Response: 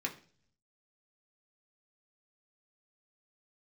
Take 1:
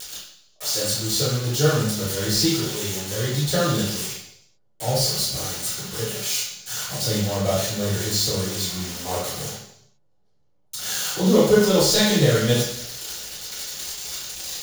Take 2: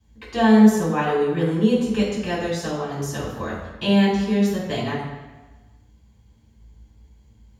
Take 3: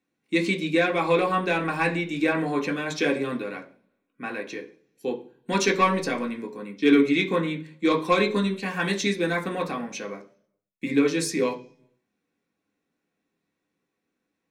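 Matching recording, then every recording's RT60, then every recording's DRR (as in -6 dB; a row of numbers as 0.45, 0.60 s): 3; 0.70, 1.2, 0.45 s; -10.5, -9.0, 0.0 dB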